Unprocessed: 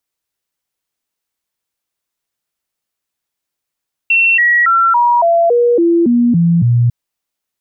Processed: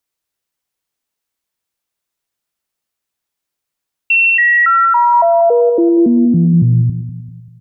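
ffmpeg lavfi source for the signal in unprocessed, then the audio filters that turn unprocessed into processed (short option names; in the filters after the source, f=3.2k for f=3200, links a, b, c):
-f lavfi -i "aevalsrc='0.422*clip(min(mod(t,0.28),0.28-mod(t,0.28))/0.005,0,1)*sin(2*PI*2710*pow(2,-floor(t/0.28)/2)*mod(t,0.28))':d=2.8:s=44100"
-filter_complex "[0:a]asplit=2[a][b];[b]adelay=195,lowpass=f=1.4k:p=1,volume=-11dB,asplit=2[c][d];[d]adelay=195,lowpass=f=1.4k:p=1,volume=0.48,asplit=2[e][f];[f]adelay=195,lowpass=f=1.4k:p=1,volume=0.48,asplit=2[g][h];[h]adelay=195,lowpass=f=1.4k:p=1,volume=0.48,asplit=2[i][j];[j]adelay=195,lowpass=f=1.4k:p=1,volume=0.48[k];[a][c][e][g][i][k]amix=inputs=6:normalize=0"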